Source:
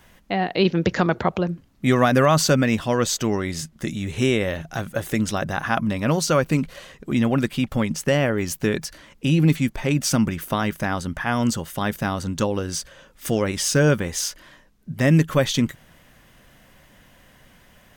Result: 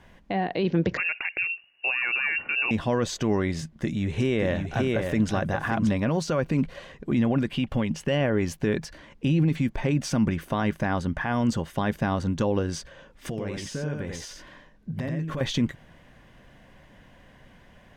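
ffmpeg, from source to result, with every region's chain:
-filter_complex "[0:a]asettb=1/sr,asplit=3[a][b][c];[a]atrim=end=0.974[d];[b]atrim=start=0.97:end=2.71,asetpts=PTS-STARTPTS,afade=t=in:d=0.004:c=qsin,afade=t=out:st=1.736:d=0.004:c=qsin,equalizer=f=1.9k:t=o:w=0.28:g=-4.5,lowpass=f=2.5k:t=q:w=0.5098,lowpass=f=2.5k:t=q:w=0.6013,lowpass=f=2.5k:t=q:w=0.9,lowpass=f=2.5k:t=q:w=2.563,afreqshift=-2900[e];[c]atrim=start=2.706[f];[d][e]acrossfade=d=0.004:c1=hsin:c2=qsin[g];[g][f]acrossfade=d=0.004:c1=qsin:c2=hsin,asettb=1/sr,asplit=3[h][i][j];[h]atrim=end=3.624[k];[i]atrim=start=3.62:end=5.9,asetpts=PTS-STARTPTS,afade=t=in:d=0.004:c=qsin,afade=t=out:st=2.276:d=0.004:c=qsin,asoftclip=type=hard:threshold=-9dB,aecho=1:1:580:0.531,atrim=end_sample=100548[l];[j]atrim=start=5.896[m];[k][l]acrossfade=d=0.004:c1=hsin:c2=qsin[n];[n][m]acrossfade=d=0.004:c1=qsin:c2=hsin,asettb=1/sr,asplit=3[o][p][q];[o]atrim=end=7.514[r];[p]atrim=start=7.51:end=8.21,asetpts=PTS-STARTPTS,afade=t=in:d=0.004:c=qsin,afade=t=out:st=0.696:d=0.004:c=qsin,equalizer=f=2.9k:w=4.6:g=7.5,acompressor=threshold=-27dB:ratio=1.5:attack=3.2:release=140:knee=1:detection=peak[s];[q]atrim=start=8.206[t];[r][s]acrossfade=d=0.004:c1=hsin:c2=qsin[u];[u][t]acrossfade=d=0.004:c1=qsin:c2=hsin,asettb=1/sr,asplit=3[v][w][x];[v]atrim=end=13.294[y];[w]atrim=start=13.29:end=15.41,asetpts=PTS-STARTPTS,afade=t=in:d=0.004:c=qsin,afade=t=out:st=2.116:d=0.004:c=qsin,asplit=2[z][aa];[aa]adelay=19,volume=-11.5dB[ab];[z][ab]amix=inputs=2:normalize=0,atrim=end_sample=93492,acompressor=threshold=-28dB:ratio=12:attack=3.2:release=140:knee=1:detection=peak,aecho=1:1:88:0.631,atrim=end_sample=93492[ac];[x]atrim=start=15.406[ad];[y][ac]acrossfade=d=0.004:c1=hsin:c2=qsin[ae];[ae][ad]acrossfade=d=0.004:c1=qsin:c2=hsin,alimiter=limit=-15dB:level=0:latency=1:release=51,aemphasis=mode=reproduction:type=75fm,bandreject=f=1.3k:w=9.6"

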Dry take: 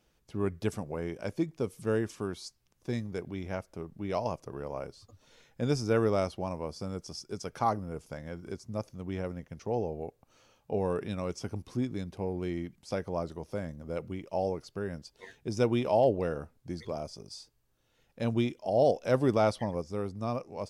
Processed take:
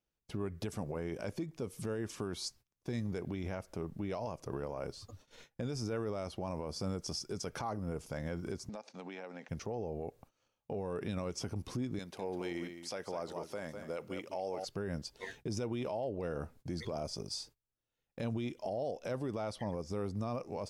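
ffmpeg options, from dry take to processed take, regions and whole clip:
-filter_complex "[0:a]asettb=1/sr,asplit=3[a][b][c];[a]atrim=end=8.694[d];[b]atrim=start=8.69:end=9.49,asetpts=PTS-STARTPTS,afade=t=in:d=0.004:c=qsin,afade=t=out:st=0.796:d=0.004:c=qsin,highpass=f=240:w=0.5412,highpass=f=240:w=1.3066,equalizer=f=330:t=q:w=4:g=-8,equalizer=f=810:t=q:w=4:g=9,equalizer=f=1.6k:t=q:w=4:g=5,equalizer=f=2.4k:t=q:w=4:g=7,equalizer=f=4k:t=q:w=4:g=9,lowpass=f=7.7k:w=0.5412,lowpass=f=7.7k:w=1.3066,acompressor=threshold=-46dB:ratio=10:attack=3.2:release=140:knee=1:detection=peak[e];[c]atrim=start=9.486[f];[d][e]acrossfade=d=0.004:c1=hsin:c2=qsin[g];[g][f]acrossfade=d=0.004:c1=qsin:c2=hsin,asettb=1/sr,asplit=3[h][i][j];[h]atrim=end=11.994[k];[i]atrim=start=11.99:end=14.65,asetpts=PTS-STARTPTS,afade=t=in:d=0.004:c=qsin,afade=t=out:st=2.656:d=0.004:c=qsin,highpass=f=700:p=1,aecho=1:1:201:0.266,atrim=end_sample=117306[l];[j]atrim=start=14.646[m];[k][l]acrossfade=d=0.004:c1=hsin:c2=qsin[n];[n][m]acrossfade=d=0.004:c1=qsin:c2=hsin,agate=range=-24dB:threshold=-59dB:ratio=16:detection=peak,acompressor=threshold=-35dB:ratio=6,alimiter=level_in=10dB:limit=-24dB:level=0:latency=1:release=33,volume=-10dB,volume=5dB"

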